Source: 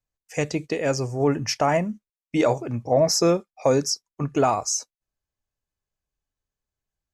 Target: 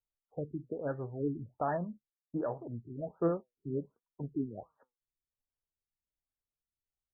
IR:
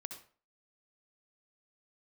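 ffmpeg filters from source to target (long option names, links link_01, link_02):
-filter_complex "[0:a]asettb=1/sr,asplit=3[link_01][link_02][link_03];[link_01]atrim=end=1.764[link_04];[link_02]atrim=start=1.76:end=3.1,asetpts=PTS-STARTPTS,afade=type=in:duration=0.004:curve=qsin,afade=type=out:start_time=1.336:duration=0.004:curve=qsin,acompressor=threshold=-20dB:ratio=2.5[link_05];[link_03]atrim=start=3.096[link_06];[link_04][link_05]acrossfade=duration=0.004:curve1=hsin:curve2=qsin[link_07];[link_07][link_06]acrossfade=duration=0.004:curve1=qsin:curve2=hsin,flanger=delay=2:depth=6.4:regen=76:speed=0.71:shape=triangular,afftfilt=real='re*lt(b*sr/1024,390*pow(1900/390,0.5+0.5*sin(2*PI*1.3*pts/sr)))':imag='im*lt(b*sr/1024,390*pow(1900/390,0.5+0.5*sin(2*PI*1.3*pts/sr)))':win_size=1024:overlap=0.75,volume=-7.5dB"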